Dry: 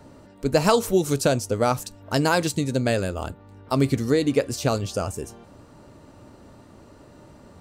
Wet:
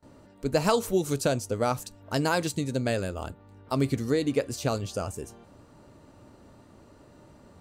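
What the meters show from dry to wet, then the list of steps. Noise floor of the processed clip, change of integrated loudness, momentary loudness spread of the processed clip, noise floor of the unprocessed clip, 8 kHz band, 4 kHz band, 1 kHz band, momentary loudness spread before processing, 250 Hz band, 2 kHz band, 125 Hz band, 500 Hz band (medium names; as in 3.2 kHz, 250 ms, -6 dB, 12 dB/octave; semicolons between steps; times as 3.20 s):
-55 dBFS, -5.0 dB, 11 LU, -50 dBFS, -5.0 dB, -5.0 dB, -5.0 dB, 11 LU, -5.0 dB, -5.0 dB, -5.0 dB, -5.0 dB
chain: gate with hold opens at -41 dBFS; band-stop 5.4 kHz, Q 28; trim -5 dB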